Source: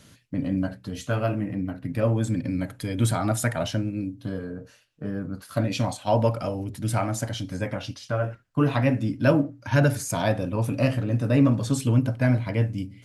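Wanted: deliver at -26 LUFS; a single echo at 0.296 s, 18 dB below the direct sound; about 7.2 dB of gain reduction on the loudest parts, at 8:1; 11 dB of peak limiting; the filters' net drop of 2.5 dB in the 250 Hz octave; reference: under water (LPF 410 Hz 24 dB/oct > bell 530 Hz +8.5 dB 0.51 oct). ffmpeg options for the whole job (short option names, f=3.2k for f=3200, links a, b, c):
-af "equalizer=f=250:t=o:g=-3.5,acompressor=threshold=-23dB:ratio=8,alimiter=limit=-23.5dB:level=0:latency=1,lowpass=f=410:w=0.5412,lowpass=f=410:w=1.3066,equalizer=f=530:t=o:w=0.51:g=8.5,aecho=1:1:296:0.126,volume=8.5dB"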